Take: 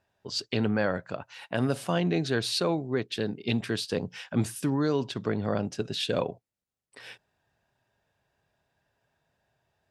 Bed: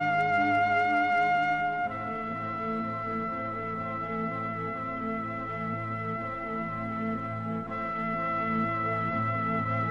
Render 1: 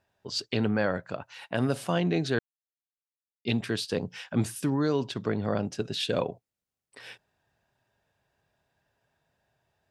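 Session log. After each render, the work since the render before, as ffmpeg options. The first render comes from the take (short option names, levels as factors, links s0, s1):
-filter_complex "[0:a]asplit=3[s0][s1][s2];[s0]atrim=end=2.39,asetpts=PTS-STARTPTS,afade=t=out:st=2.386:d=0.004:c=hsin[s3];[s1]atrim=start=2.39:end=3.45,asetpts=PTS-STARTPTS,volume=0[s4];[s2]atrim=start=3.45,asetpts=PTS-STARTPTS,afade=t=in:d=0.004:c=hsin[s5];[s3][s4][s5]concat=n=3:v=0:a=1"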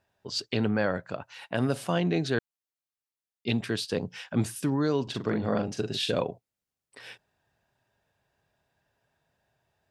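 -filter_complex "[0:a]asettb=1/sr,asplit=3[s0][s1][s2];[s0]atrim=end=5.034[s3];[s1]atrim=start=5.03:end=6.14,asetpts=PTS-STARTPTS,afade=t=in:d=0.004:c=qsin,afade=t=out:st=1.106:d=0.004:c=qsin,asplit=2[s4][s5];[s5]adelay=42,volume=0.562[s6];[s4][s6]amix=inputs=2:normalize=0,atrim=end_sample=48951[s7];[s2]atrim=start=6.136[s8];[s3][s7]acrossfade=d=0.004:c1=hsin:c2=qsin[s9];[s9][s8]acrossfade=d=0.004:c1=qsin:c2=hsin"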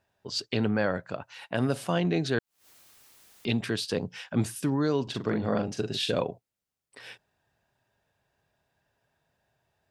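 -filter_complex "[0:a]asettb=1/sr,asplit=3[s0][s1][s2];[s0]atrim=end=2.054[s3];[s1]atrim=start=2.05:end=4.07,asetpts=PTS-STARTPTS,afade=t=in:d=0.004:c=qsin,afade=t=out:st=2.016:d=0.004:c=qsin,acompressor=mode=upward:threshold=0.0398:ratio=2.5:attack=3.2:release=140:knee=2.83:detection=peak[s4];[s2]atrim=start=4.066[s5];[s3][s4]acrossfade=d=0.004:c1=hsin:c2=qsin[s6];[s6][s5]acrossfade=d=0.004:c1=qsin:c2=hsin"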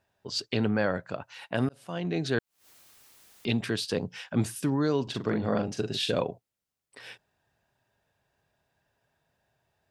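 -filter_complex "[0:a]asplit=2[s0][s1];[s0]atrim=end=1.69,asetpts=PTS-STARTPTS,afade=t=out:st=1.686:d=0.004:c=hsin[s2];[s1]atrim=start=1.69,asetpts=PTS-STARTPTS,afade=t=in:d=0.65[s3];[s2][s3]concat=n=2:v=0:a=1"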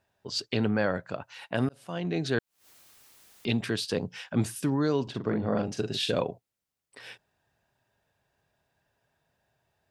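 -filter_complex "[0:a]asettb=1/sr,asplit=3[s0][s1][s2];[s0]atrim=end=5.104[s3];[s1]atrim=start=5.1:end=5.58,asetpts=PTS-STARTPTS,afade=t=in:d=0.004:c=qsin,afade=t=out:st=0.476:d=0.004:c=qsin,highshelf=f=2700:g=-11.5[s4];[s2]atrim=start=5.576[s5];[s3][s4]acrossfade=d=0.004:c1=hsin:c2=qsin[s6];[s6][s5]acrossfade=d=0.004:c1=qsin:c2=hsin"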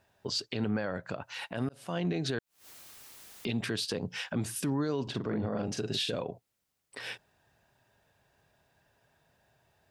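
-filter_complex "[0:a]asplit=2[s0][s1];[s1]acompressor=threshold=0.0141:ratio=6,volume=0.891[s2];[s0][s2]amix=inputs=2:normalize=0,alimiter=limit=0.075:level=0:latency=1:release=142"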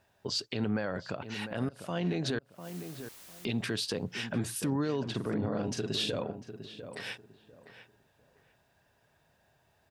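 -filter_complex "[0:a]asplit=2[s0][s1];[s1]adelay=699,lowpass=f=1700:p=1,volume=0.316,asplit=2[s2][s3];[s3]adelay=699,lowpass=f=1700:p=1,volume=0.25,asplit=2[s4][s5];[s5]adelay=699,lowpass=f=1700:p=1,volume=0.25[s6];[s0][s2][s4][s6]amix=inputs=4:normalize=0"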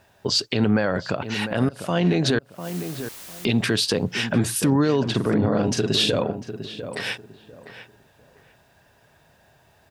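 -af "volume=3.76"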